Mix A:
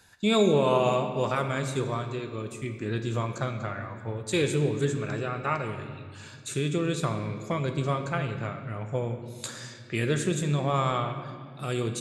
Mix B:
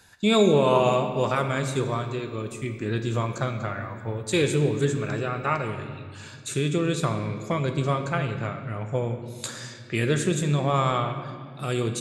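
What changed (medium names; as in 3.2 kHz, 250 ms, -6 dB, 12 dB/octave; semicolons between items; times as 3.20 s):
speech +3.0 dB; background +10.5 dB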